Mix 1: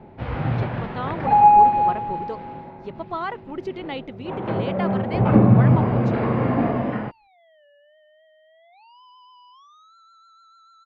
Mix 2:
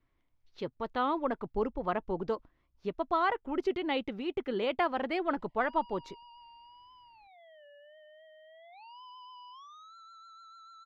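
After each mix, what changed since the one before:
first sound: muted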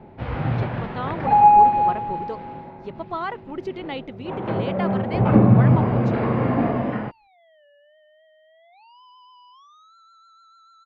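first sound: unmuted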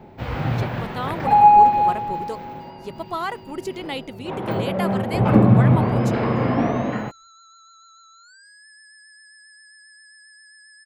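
second sound: entry -3.00 s; master: remove distance through air 260 m

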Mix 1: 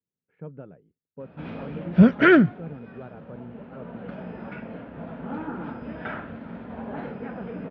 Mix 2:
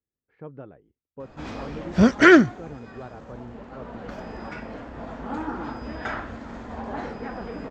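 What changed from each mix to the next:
master: remove cabinet simulation 110–2900 Hz, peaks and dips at 170 Hz +9 dB, 330 Hz -4 dB, 780 Hz -5 dB, 1.1 kHz -7 dB, 1.9 kHz -6 dB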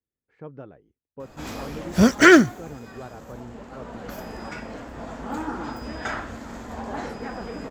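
master: remove distance through air 150 m

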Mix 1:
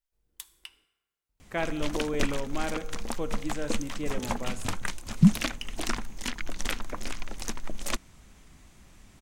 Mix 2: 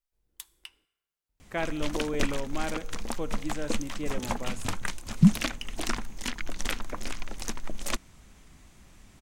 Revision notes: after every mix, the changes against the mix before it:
speech: send -6.0 dB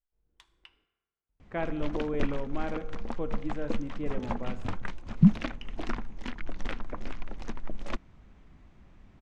speech: send +7.5 dB; master: add tape spacing loss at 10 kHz 32 dB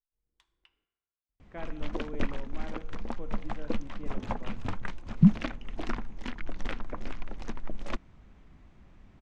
speech -9.5 dB

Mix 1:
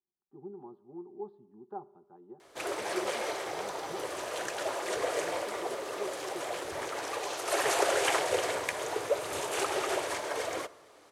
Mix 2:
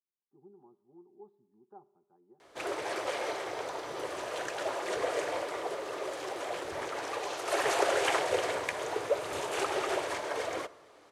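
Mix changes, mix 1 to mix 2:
speech -11.5 dB; master: add treble shelf 7.1 kHz -9 dB

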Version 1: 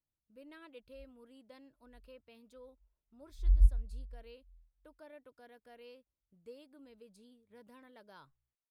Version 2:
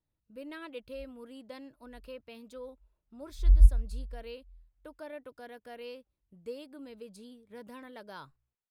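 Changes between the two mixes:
speech +10.5 dB; background +6.0 dB

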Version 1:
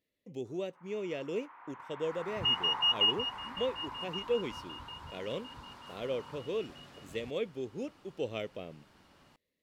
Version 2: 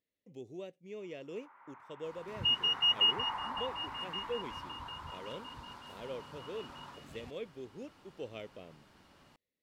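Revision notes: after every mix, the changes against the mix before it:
speech -7.5 dB; first sound: entry +0.55 s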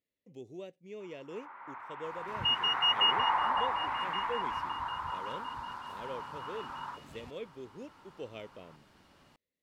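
first sound +10.5 dB

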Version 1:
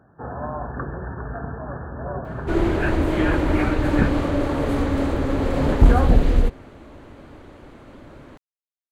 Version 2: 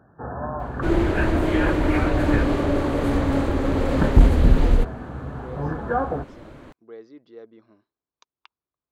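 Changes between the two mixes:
speech: unmuted; second sound: entry -1.65 s

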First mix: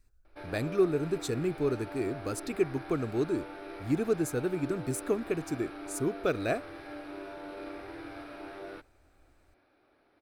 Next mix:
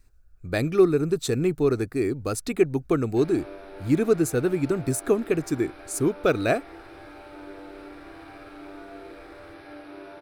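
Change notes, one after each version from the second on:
speech +7.5 dB; background: entry +2.80 s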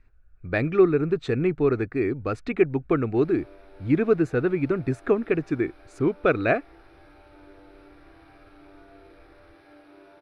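speech: add resonant low-pass 2.2 kHz, resonance Q 1.5; background -9.0 dB

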